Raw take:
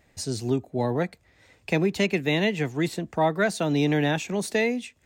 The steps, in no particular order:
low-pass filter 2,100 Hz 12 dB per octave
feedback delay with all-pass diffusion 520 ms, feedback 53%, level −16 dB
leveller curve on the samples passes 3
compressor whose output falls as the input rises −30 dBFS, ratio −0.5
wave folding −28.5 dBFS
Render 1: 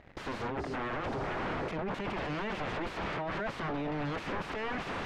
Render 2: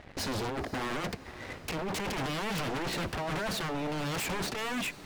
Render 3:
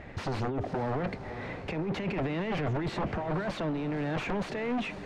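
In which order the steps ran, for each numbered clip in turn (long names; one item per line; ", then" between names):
feedback delay with all-pass diffusion, then compressor whose output falls as the input rises, then leveller curve on the samples, then wave folding, then low-pass filter
low-pass filter, then compressor whose output falls as the input rises, then leveller curve on the samples, then wave folding, then feedback delay with all-pass diffusion
compressor whose output falls as the input rises, then wave folding, then feedback delay with all-pass diffusion, then leveller curve on the samples, then low-pass filter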